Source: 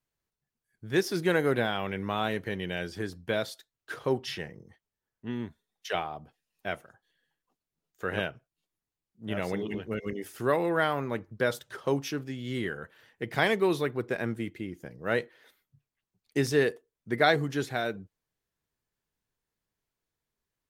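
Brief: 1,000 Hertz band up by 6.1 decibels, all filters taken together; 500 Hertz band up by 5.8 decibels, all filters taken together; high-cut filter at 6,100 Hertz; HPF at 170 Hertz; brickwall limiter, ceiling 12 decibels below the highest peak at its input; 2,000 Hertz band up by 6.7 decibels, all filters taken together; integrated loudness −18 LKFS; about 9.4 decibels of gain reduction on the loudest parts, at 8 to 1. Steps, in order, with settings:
high-pass filter 170 Hz
low-pass filter 6,100 Hz
parametric band 500 Hz +6 dB
parametric band 1,000 Hz +4.5 dB
parametric band 2,000 Hz +6.5 dB
downward compressor 8 to 1, threshold −21 dBFS
level +14.5 dB
brickwall limiter −5 dBFS

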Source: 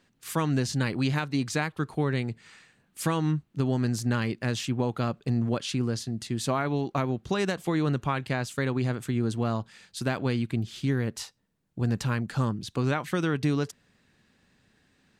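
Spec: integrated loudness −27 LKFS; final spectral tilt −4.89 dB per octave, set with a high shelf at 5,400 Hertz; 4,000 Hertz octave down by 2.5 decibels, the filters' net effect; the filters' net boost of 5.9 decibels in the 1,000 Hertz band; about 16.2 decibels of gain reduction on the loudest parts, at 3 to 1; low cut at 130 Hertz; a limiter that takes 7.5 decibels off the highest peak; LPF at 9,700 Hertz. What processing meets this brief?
high-pass filter 130 Hz
low-pass filter 9,700 Hz
parametric band 1,000 Hz +7.5 dB
parametric band 4,000 Hz −6.5 dB
high-shelf EQ 5,400 Hz +7 dB
downward compressor 3 to 1, threshold −42 dBFS
level +16.5 dB
brickwall limiter −14 dBFS

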